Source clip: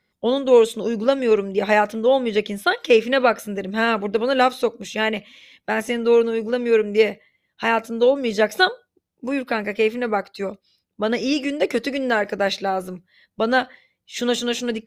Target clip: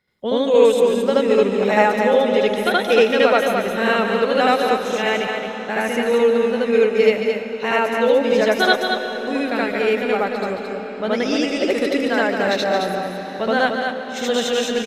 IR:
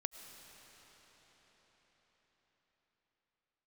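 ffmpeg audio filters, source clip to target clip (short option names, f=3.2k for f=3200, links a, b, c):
-filter_complex "[0:a]aecho=1:1:220:0.531,asplit=2[a][b];[1:a]atrim=start_sample=2205,adelay=76[c];[b][c]afir=irnorm=-1:irlink=0,volume=5dB[d];[a][d]amix=inputs=2:normalize=0,volume=-3.5dB"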